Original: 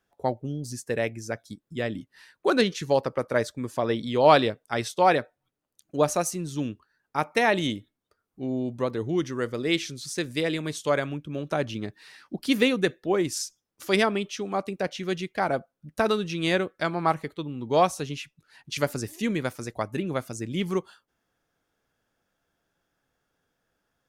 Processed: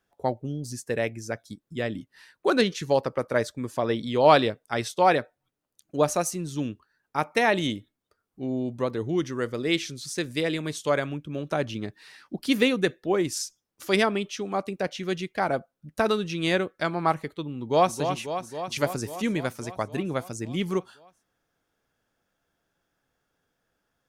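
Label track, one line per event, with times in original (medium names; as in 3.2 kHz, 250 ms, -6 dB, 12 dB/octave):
17.590000	17.990000	echo throw 270 ms, feedback 75%, level -8 dB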